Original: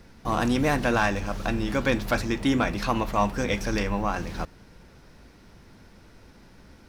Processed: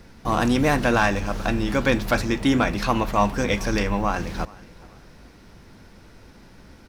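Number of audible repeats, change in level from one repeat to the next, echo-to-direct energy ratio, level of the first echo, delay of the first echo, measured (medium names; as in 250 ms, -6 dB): 2, -9.0 dB, -22.5 dB, -23.0 dB, 426 ms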